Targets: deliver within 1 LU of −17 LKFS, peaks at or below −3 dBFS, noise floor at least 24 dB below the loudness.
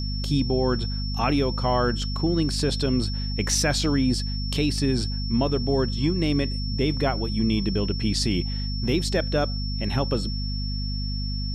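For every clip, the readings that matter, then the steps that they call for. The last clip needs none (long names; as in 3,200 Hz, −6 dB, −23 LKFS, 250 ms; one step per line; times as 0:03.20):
mains hum 50 Hz; hum harmonics up to 250 Hz; level of the hum −26 dBFS; interfering tone 5,400 Hz; level of the tone −34 dBFS; integrated loudness −25.0 LKFS; sample peak −9.5 dBFS; target loudness −17.0 LKFS
→ hum removal 50 Hz, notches 5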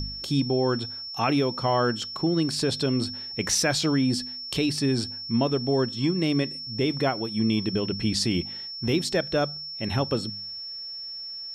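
mains hum none found; interfering tone 5,400 Hz; level of the tone −34 dBFS
→ notch filter 5,400 Hz, Q 30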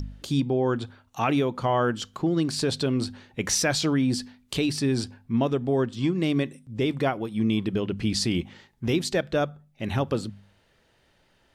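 interfering tone none found; integrated loudness −26.5 LKFS; sample peak −11.5 dBFS; target loudness −17.0 LKFS
→ level +9.5 dB
brickwall limiter −3 dBFS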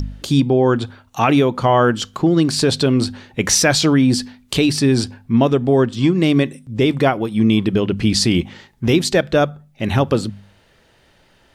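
integrated loudness −17.0 LKFS; sample peak −3.0 dBFS; background noise floor −55 dBFS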